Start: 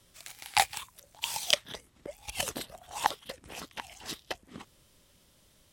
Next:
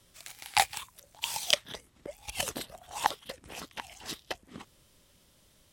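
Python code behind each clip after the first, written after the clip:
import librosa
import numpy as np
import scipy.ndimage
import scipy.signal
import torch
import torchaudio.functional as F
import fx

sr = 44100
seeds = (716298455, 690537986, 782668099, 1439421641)

y = x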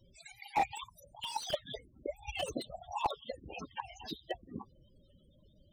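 y = fx.spec_topn(x, sr, count=16)
y = fx.slew_limit(y, sr, full_power_hz=31.0)
y = F.gain(torch.from_numpy(y), 4.0).numpy()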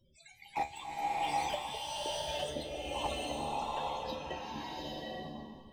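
y = fx.comb_fb(x, sr, f0_hz=74.0, decay_s=0.24, harmonics='all', damping=0.0, mix_pct=80)
y = fx.rev_bloom(y, sr, seeds[0], attack_ms=820, drr_db=-6.0)
y = F.gain(torch.from_numpy(y), 1.5).numpy()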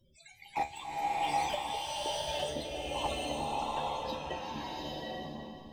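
y = fx.echo_feedback(x, sr, ms=363, feedback_pct=38, wet_db=-12.0)
y = F.gain(torch.from_numpy(y), 1.5).numpy()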